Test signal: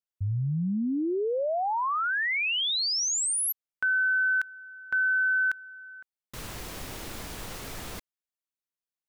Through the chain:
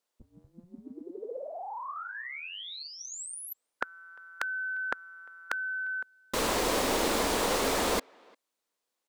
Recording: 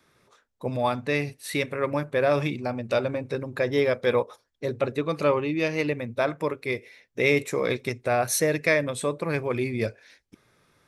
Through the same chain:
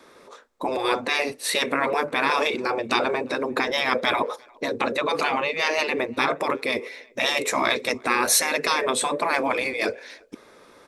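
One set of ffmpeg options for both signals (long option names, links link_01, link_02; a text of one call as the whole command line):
ffmpeg -i in.wav -filter_complex "[0:a]afftfilt=real='re*lt(hypot(re,im),0.126)':imag='im*lt(hypot(re,im),0.126)':win_size=1024:overlap=0.75,equalizer=frequency=125:width_type=o:width=1:gain=-10,equalizer=frequency=250:width_type=o:width=1:gain=8,equalizer=frequency=500:width_type=o:width=1:gain=11,equalizer=frequency=1000:width_type=o:width=1:gain=8,equalizer=frequency=2000:width_type=o:width=1:gain=3,equalizer=frequency=4000:width_type=o:width=1:gain=5,equalizer=frequency=8000:width_type=o:width=1:gain=5,asplit=2[link_01][link_02];[link_02]adelay=350,highpass=300,lowpass=3400,asoftclip=type=hard:threshold=-19dB,volume=-28dB[link_03];[link_01][link_03]amix=inputs=2:normalize=0,volume=4.5dB" out.wav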